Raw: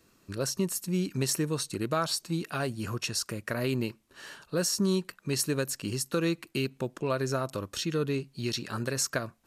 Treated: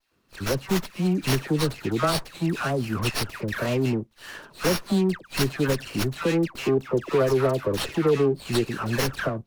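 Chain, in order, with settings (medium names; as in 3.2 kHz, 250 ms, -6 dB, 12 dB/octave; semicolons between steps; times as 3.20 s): 6.50–8.59 s: peaking EQ 420 Hz +8 dB 0.73 oct; waveshaping leveller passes 2; phase dispersion lows, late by 121 ms, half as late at 1.5 kHz; sliding maximum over 5 samples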